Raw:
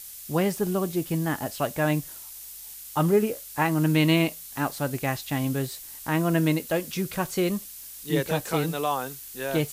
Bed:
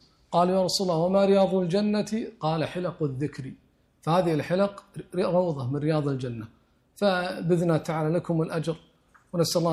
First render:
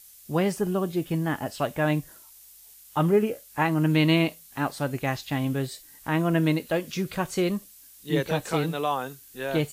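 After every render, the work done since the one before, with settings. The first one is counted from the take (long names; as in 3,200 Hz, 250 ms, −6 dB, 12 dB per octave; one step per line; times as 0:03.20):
noise reduction from a noise print 9 dB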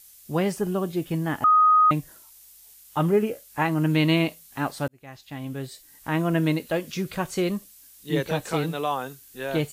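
0:01.44–0:01.91: beep over 1,250 Hz −13.5 dBFS
0:04.88–0:06.15: fade in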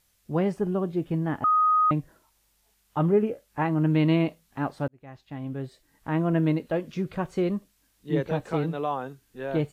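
low-pass filter 1,000 Hz 6 dB per octave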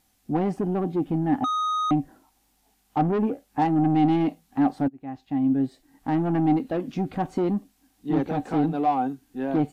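soft clipping −24.5 dBFS, distortion −9 dB
hollow resonant body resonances 270/760 Hz, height 16 dB, ringing for 50 ms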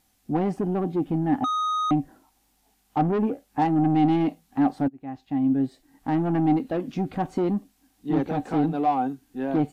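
no processing that can be heard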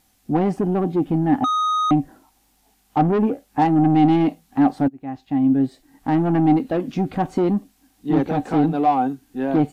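level +5 dB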